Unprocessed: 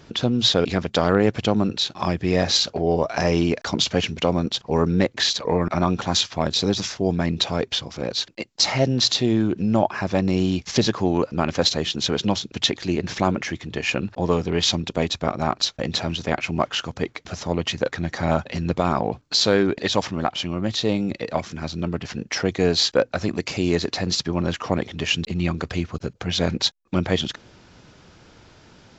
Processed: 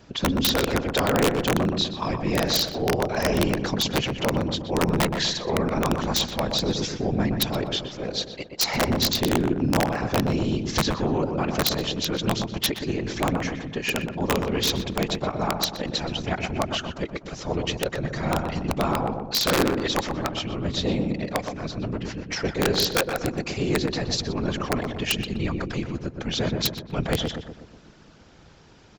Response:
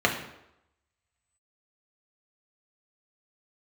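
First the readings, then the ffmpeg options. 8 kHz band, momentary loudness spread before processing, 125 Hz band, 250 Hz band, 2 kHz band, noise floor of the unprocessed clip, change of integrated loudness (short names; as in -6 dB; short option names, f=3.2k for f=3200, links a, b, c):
n/a, 7 LU, -2.5 dB, -2.5 dB, -0.5 dB, -52 dBFS, -2.5 dB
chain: -filter_complex "[0:a]afftfilt=real='hypot(re,im)*cos(2*PI*random(0))':imag='hypot(re,im)*sin(2*PI*random(1))':win_size=512:overlap=0.75,aeval=exprs='(mod(6.31*val(0)+1,2)-1)/6.31':c=same,asplit=2[a][b];[b]adelay=123,lowpass=f=1.3k:p=1,volume=-4.5dB,asplit=2[c][d];[d]adelay=123,lowpass=f=1.3k:p=1,volume=0.54,asplit=2[e][f];[f]adelay=123,lowpass=f=1.3k:p=1,volume=0.54,asplit=2[g][h];[h]adelay=123,lowpass=f=1.3k:p=1,volume=0.54,asplit=2[i][j];[j]adelay=123,lowpass=f=1.3k:p=1,volume=0.54,asplit=2[k][l];[l]adelay=123,lowpass=f=1.3k:p=1,volume=0.54,asplit=2[m][n];[n]adelay=123,lowpass=f=1.3k:p=1,volume=0.54[o];[a][c][e][g][i][k][m][o]amix=inputs=8:normalize=0,volume=2.5dB"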